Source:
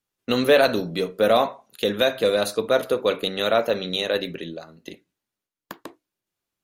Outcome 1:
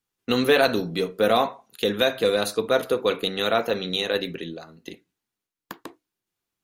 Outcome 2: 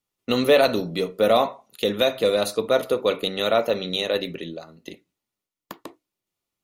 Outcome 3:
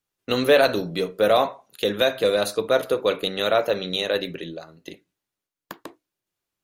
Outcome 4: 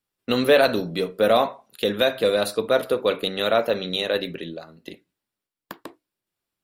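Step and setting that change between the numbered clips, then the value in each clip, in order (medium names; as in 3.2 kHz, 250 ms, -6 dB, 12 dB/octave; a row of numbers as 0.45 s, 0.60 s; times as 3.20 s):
band-stop, frequency: 590 Hz, 1.6 kHz, 230 Hz, 6.4 kHz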